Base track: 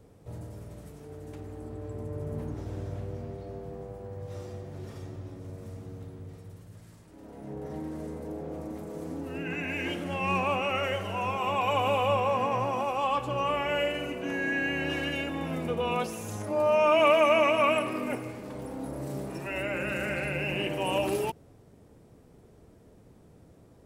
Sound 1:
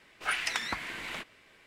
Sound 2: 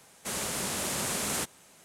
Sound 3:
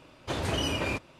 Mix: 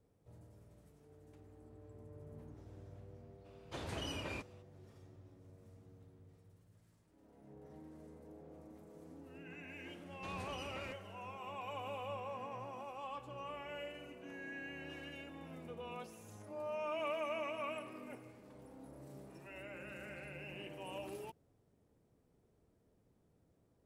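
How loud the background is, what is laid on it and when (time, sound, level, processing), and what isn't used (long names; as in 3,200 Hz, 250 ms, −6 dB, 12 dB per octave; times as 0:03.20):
base track −18 dB
0:03.44: mix in 3 −13 dB, fades 0.02 s
0:09.95: mix in 3 −16 dB + brickwall limiter −23 dBFS
not used: 1, 2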